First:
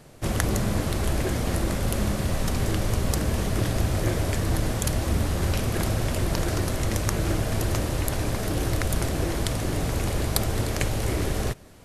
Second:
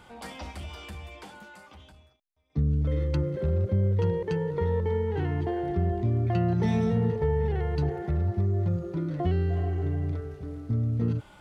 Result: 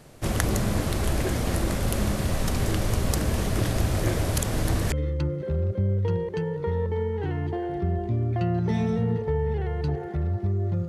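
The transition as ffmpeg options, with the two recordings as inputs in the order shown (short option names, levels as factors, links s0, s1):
-filter_complex "[0:a]apad=whole_dur=10.88,atrim=end=10.88,asplit=2[s0][s1];[s0]atrim=end=4.332[s2];[s1]atrim=start=4.328:end=4.922,asetpts=PTS-STARTPTS,areverse[s3];[1:a]atrim=start=2.858:end=8.82[s4];[s2][s3]acrossfade=d=0.004:c1=hsin:c2=hsin[s5];[s5][s4]acrossfade=d=0.004:c1=hsin:c2=hsin"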